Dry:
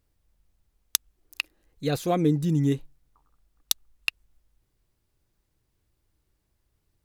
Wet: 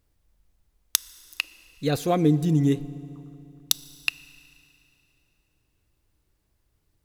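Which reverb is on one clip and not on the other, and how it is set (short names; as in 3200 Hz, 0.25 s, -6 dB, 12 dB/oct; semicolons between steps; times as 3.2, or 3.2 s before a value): FDN reverb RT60 3.1 s, high-frequency decay 0.85×, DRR 18 dB; gain +2 dB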